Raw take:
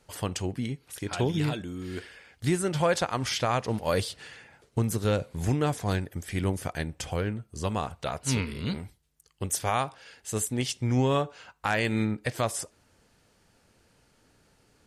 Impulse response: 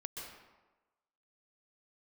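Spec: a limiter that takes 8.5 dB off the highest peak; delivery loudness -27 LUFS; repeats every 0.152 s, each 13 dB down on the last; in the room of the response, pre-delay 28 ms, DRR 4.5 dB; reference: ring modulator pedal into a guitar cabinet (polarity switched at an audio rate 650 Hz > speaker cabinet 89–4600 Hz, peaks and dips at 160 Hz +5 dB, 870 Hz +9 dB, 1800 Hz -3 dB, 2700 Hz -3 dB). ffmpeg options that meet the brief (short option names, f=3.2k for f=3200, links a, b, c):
-filter_complex "[0:a]alimiter=limit=-22.5dB:level=0:latency=1,aecho=1:1:152|304|456:0.224|0.0493|0.0108,asplit=2[a][b];[1:a]atrim=start_sample=2205,adelay=28[c];[b][c]afir=irnorm=-1:irlink=0,volume=-3dB[d];[a][d]amix=inputs=2:normalize=0,aeval=exprs='val(0)*sgn(sin(2*PI*650*n/s))':c=same,highpass=89,equalizer=f=160:t=q:w=4:g=5,equalizer=f=870:t=q:w=4:g=9,equalizer=f=1.8k:t=q:w=4:g=-3,equalizer=f=2.7k:t=q:w=4:g=-3,lowpass=f=4.6k:w=0.5412,lowpass=f=4.6k:w=1.3066,volume=2.5dB"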